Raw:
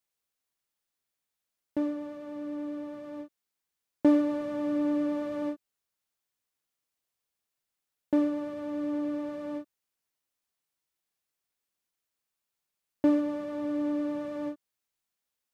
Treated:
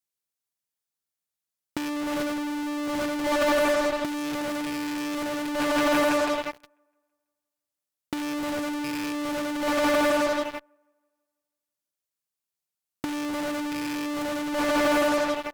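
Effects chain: rattling part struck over -37 dBFS, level -23 dBFS; tone controls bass +4 dB, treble +6 dB; sample leveller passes 5; HPF 63 Hz 12 dB/oct; on a send: band-limited delay 0.164 s, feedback 52%, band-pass 930 Hz, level -7 dB; on the sum: tube stage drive 27 dB, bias 0.45; in parallel at -12 dB: fuzz box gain 59 dB, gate -59 dBFS; on the sum: negative-ratio compressor -25 dBFS, ratio -0.5

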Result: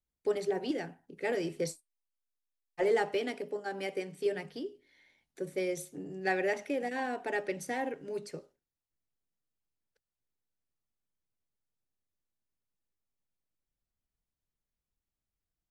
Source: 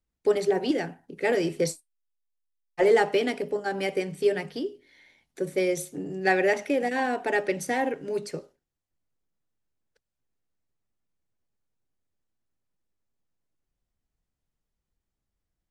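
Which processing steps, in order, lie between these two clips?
3.14–4.26 HPF 180 Hz; gain -8 dB

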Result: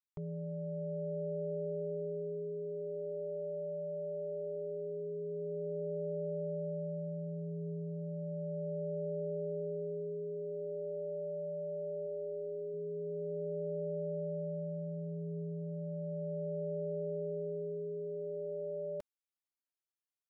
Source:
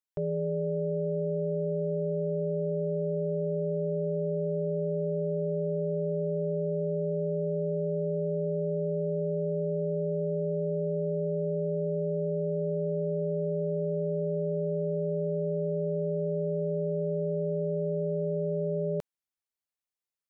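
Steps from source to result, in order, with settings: flange 0.13 Hz, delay 0.8 ms, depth 2.7 ms, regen -1%; 12.06–12.74 dynamic EQ 160 Hz, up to -5 dB, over -57 dBFS, Q 2.1; gain -5.5 dB

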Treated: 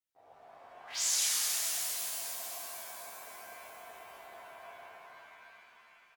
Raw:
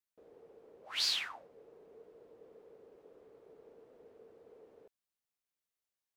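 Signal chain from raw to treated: echo 0.252 s -20 dB; pitch shift +7.5 st; shimmer reverb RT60 3.5 s, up +7 st, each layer -2 dB, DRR -9 dB; gain -4.5 dB

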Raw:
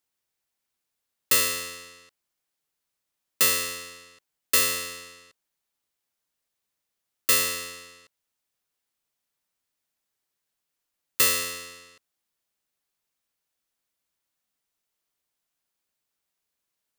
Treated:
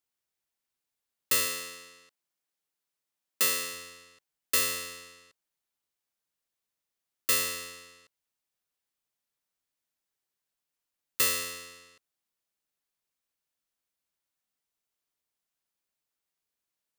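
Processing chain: 1.46–3.73 HPF 130 Hz 12 dB/oct; gain -5 dB

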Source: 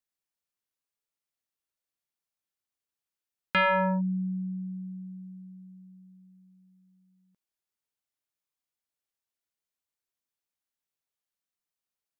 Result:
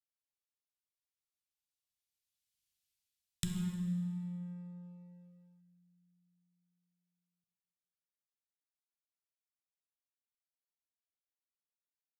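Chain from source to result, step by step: self-modulated delay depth 0.7 ms; Doppler pass-by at 2.72, 19 m/s, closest 7.8 m; treble ducked by the level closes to 400 Hz, closed at -38 dBFS; Chebyshev band-stop 120–3000 Hz, order 2; sample leveller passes 1; reverb RT60 1.9 s, pre-delay 5 ms, DRR 6 dB; gain +8 dB

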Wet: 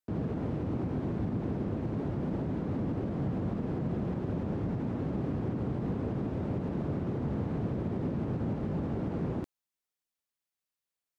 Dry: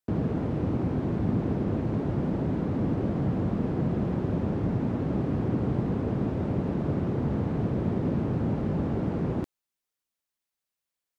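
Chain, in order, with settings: limiter -20.5 dBFS, peak gain reduction 5.5 dB; gain -4 dB

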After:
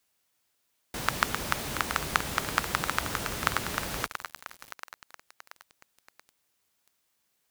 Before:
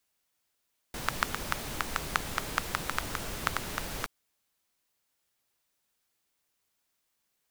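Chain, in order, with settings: HPF 46 Hz 12 dB/oct; lo-fi delay 0.681 s, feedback 55%, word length 6-bit, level -9 dB; gain +3.5 dB

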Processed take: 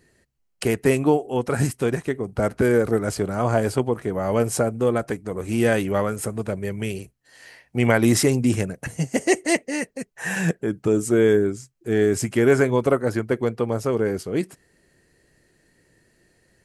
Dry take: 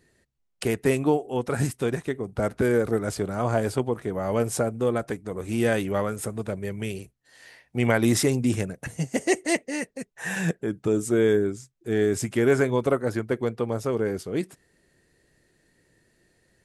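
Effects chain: notch 3600 Hz, Q 12; gain +3.5 dB

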